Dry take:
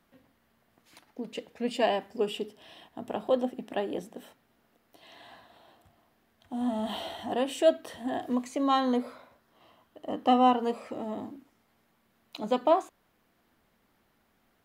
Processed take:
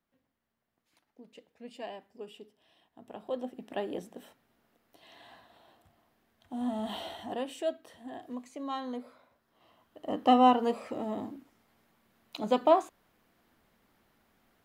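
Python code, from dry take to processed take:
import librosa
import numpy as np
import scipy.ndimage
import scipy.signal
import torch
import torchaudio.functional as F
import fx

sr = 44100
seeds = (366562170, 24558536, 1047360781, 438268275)

y = fx.gain(x, sr, db=fx.line((2.83, -15.5), (3.83, -3.0), (7.13, -3.0), (7.76, -11.0), (9.12, -11.0), (10.13, 0.5)))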